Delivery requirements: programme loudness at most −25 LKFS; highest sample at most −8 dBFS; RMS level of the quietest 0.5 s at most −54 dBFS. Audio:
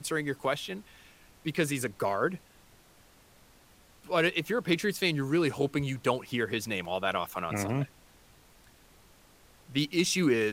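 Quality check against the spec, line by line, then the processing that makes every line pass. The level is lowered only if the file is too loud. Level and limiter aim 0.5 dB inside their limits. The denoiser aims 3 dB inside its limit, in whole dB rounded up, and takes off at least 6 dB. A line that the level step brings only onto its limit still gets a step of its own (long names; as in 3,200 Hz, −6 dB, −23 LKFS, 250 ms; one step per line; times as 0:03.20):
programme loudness −30.0 LKFS: in spec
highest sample −12.0 dBFS: in spec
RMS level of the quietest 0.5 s −59 dBFS: in spec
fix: no processing needed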